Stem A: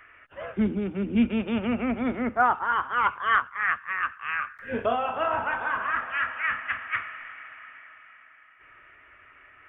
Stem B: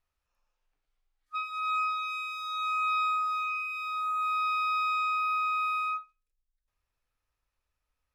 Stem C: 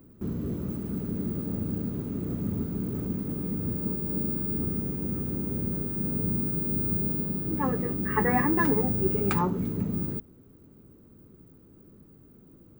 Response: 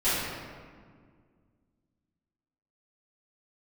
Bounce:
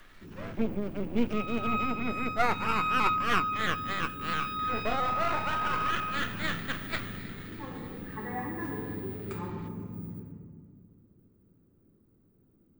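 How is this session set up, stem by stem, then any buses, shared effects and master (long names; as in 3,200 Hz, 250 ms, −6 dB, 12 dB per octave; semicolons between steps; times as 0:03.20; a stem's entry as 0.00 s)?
−1.5 dB, 0.00 s, no send, half-wave rectification; pitch modulation by a square or saw wave saw up 3 Hz, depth 100 cents
−9.0 dB, 0.00 s, send −8.5 dB, upward compression, threshold −37 dBFS
−18.0 dB, 0.00 s, send −10 dB, no processing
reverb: on, RT60 1.9 s, pre-delay 3 ms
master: no processing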